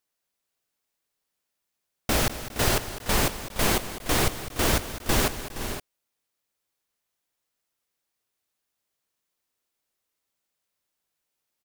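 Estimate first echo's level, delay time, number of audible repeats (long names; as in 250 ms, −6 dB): −13.0 dB, 204 ms, 4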